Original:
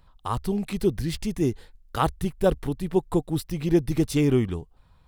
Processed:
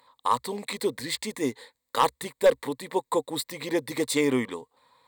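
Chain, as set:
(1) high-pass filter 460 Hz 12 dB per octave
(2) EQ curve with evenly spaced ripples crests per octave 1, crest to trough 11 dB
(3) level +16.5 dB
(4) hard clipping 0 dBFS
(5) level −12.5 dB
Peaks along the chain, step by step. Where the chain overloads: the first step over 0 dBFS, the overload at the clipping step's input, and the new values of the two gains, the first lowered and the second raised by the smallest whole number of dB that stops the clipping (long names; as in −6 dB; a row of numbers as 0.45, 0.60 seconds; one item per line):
−9.5, −9.0, +7.5, 0.0, −12.5 dBFS
step 3, 7.5 dB
step 3 +8.5 dB, step 5 −4.5 dB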